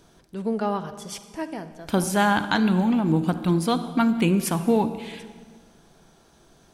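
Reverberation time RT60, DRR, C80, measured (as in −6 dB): 1.6 s, 11.0 dB, 13.0 dB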